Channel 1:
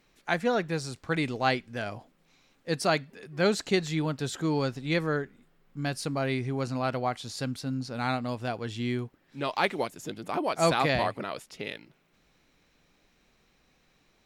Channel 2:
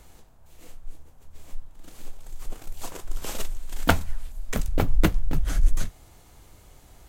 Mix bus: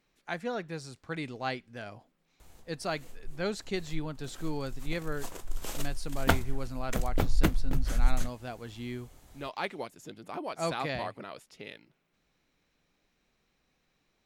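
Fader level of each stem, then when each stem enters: -8.0, -4.5 dB; 0.00, 2.40 s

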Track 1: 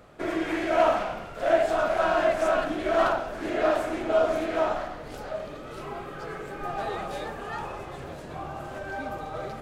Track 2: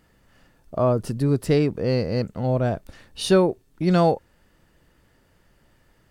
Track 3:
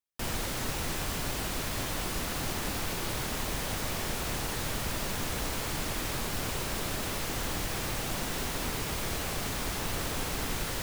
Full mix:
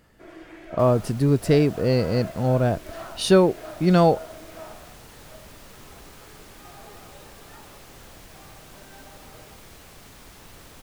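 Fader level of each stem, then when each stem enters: -16.0, +1.5, -13.5 dB; 0.00, 0.00, 0.60 s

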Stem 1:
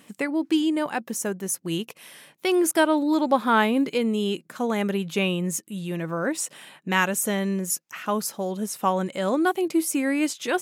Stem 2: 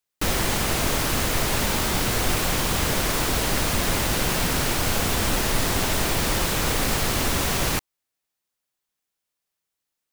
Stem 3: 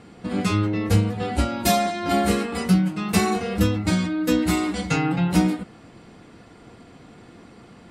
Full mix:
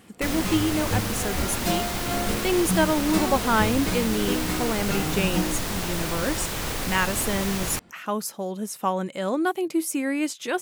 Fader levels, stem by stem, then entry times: -2.0, -6.0, -8.0 dB; 0.00, 0.00, 0.00 s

